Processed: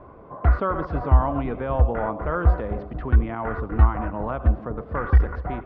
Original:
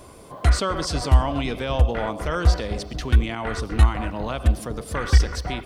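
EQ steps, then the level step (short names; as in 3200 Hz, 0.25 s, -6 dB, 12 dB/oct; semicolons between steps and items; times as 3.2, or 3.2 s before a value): ladder low-pass 1700 Hz, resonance 25%; +5.5 dB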